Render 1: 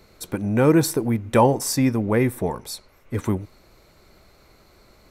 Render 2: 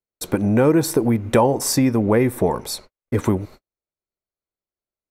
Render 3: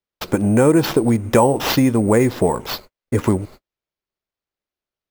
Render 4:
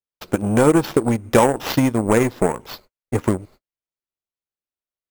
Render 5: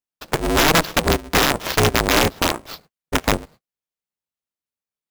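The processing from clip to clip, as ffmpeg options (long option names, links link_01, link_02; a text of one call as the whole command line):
ffmpeg -i in.wav -af "agate=range=-51dB:threshold=-43dB:ratio=16:detection=peak,acompressor=threshold=-22dB:ratio=4,equalizer=frequency=520:width_type=o:width=2.5:gain=4.5,volume=5dB" out.wav
ffmpeg -i in.wav -af "acrusher=samples=5:mix=1:aa=0.000001,volume=2dB" out.wav
ffmpeg -i in.wav -af "aeval=exprs='0.891*(cos(1*acos(clip(val(0)/0.891,-1,1)))-cos(1*PI/2))+0.0891*(cos(7*acos(clip(val(0)/0.891,-1,1)))-cos(7*PI/2))':channel_layout=same" out.wav
ffmpeg -i in.wav -af "aeval=exprs='0.891*(cos(1*acos(clip(val(0)/0.891,-1,1)))-cos(1*PI/2))+0.178*(cos(4*acos(clip(val(0)/0.891,-1,1)))-cos(4*PI/2))':channel_layout=same,aeval=exprs='(mod(1.78*val(0)+1,2)-1)/1.78':channel_layout=same,aeval=exprs='val(0)*sgn(sin(2*PI*160*n/s))':channel_layout=same" out.wav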